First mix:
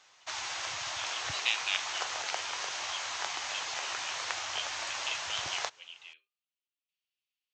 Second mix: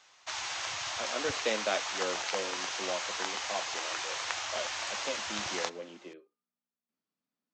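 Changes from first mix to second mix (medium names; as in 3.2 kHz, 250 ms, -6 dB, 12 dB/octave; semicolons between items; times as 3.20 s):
speech: remove resonant high-pass 2.8 kHz, resonance Q 3.9; reverb: on, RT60 2.7 s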